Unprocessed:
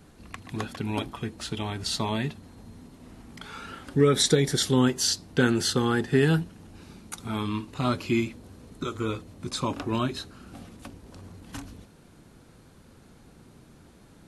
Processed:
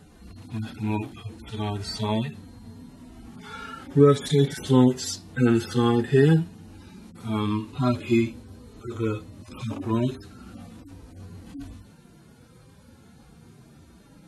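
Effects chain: median-filter separation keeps harmonic; gain +4.5 dB

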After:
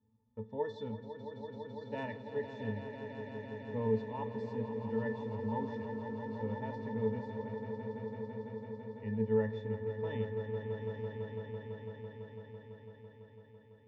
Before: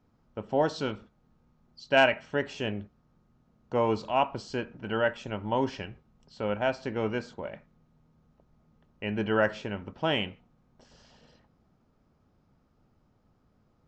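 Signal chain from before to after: tone controls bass -1 dB, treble +11 dB; octave resonator A, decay 0.14 s; on a send: swelling echo 0.167 s, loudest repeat 5, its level -10 dB; on the sum: gain +1 dB

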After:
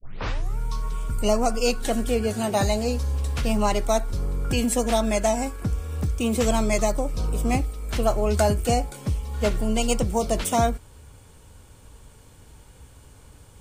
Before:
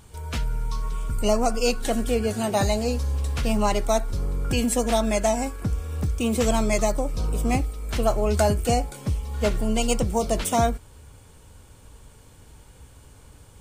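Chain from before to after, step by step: tape start at the beginning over 0.58 s

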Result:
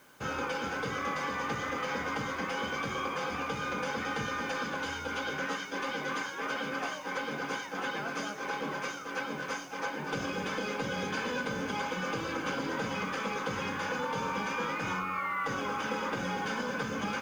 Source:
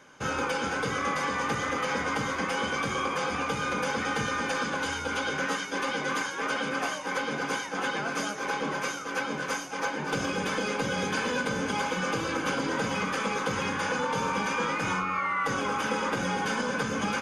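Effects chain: LPF 6100 Hz 12 dB/oct; in parallel at -10 dB: requantised 8-bit, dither triangular; on the sum: gain -7 dB

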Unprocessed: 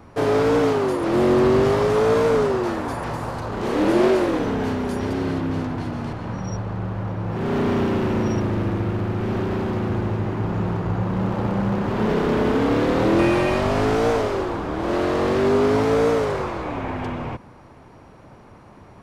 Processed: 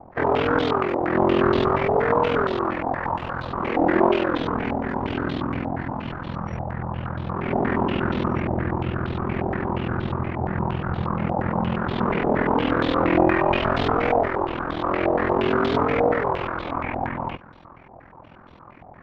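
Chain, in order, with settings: ring modulator 21 Hz; notch 430 Hz, Q 12; stepped low-pass 8.5 Hz 760–3600 Hz

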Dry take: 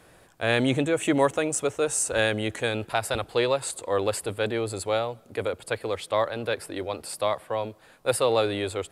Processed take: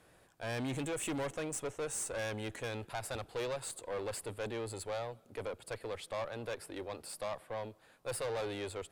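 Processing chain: 0.73–1.19 high shelf 4800 Hz +8.5 dB; tube stage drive 25 dB, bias 0.4; gain -8 dB

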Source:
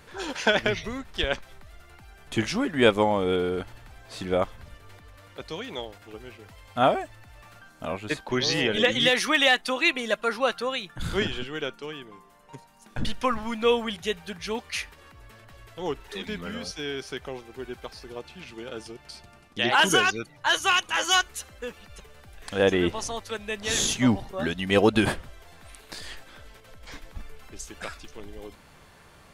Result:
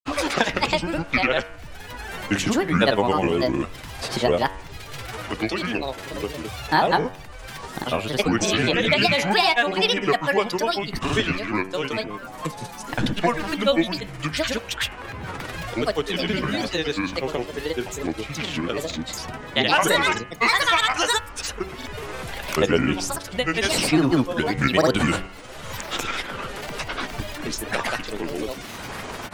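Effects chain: grains, pitch spread up and down by 7 st; de-hum 94.72 Hz, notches 33; three-band squash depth 70%; gain +6 dB

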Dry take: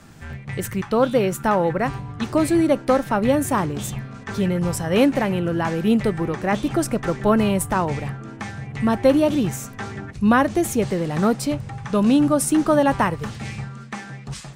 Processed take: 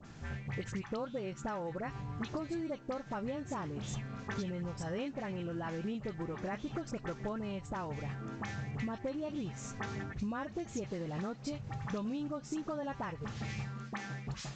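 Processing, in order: compressor 12:1, threshold -29 dBFS, peak gain reduction 19 dB; dispersion highs, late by 49 ms, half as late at 1700 Hz; gain -6 dB; µ-law 128 kbps 16000 Hz

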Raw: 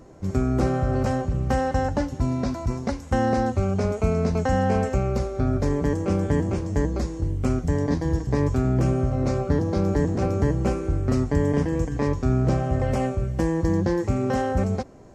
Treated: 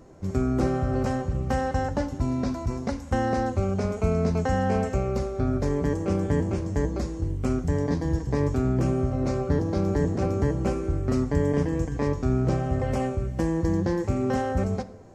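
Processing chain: on a send: reverb RT60 0.90 s, pre-delay 8 ms, DRR 13 dB; on the sum: gain -2.5 dB

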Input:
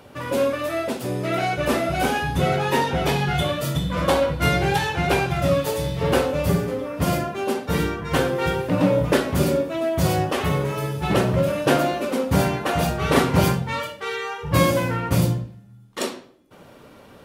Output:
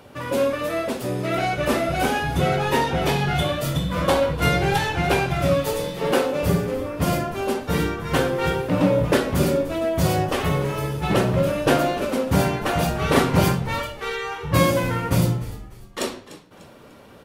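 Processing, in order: 5.73–6.43 HPF 180 Hz 24 dB/oct; frequency-shifting echo 0.297 s, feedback 38%, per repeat -74 Hz, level -16 dB

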